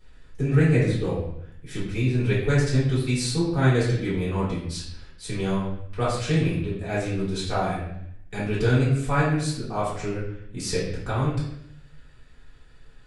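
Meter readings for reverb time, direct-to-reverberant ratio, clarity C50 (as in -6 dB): 0.70 s, -10.5 dB, 2.0 dB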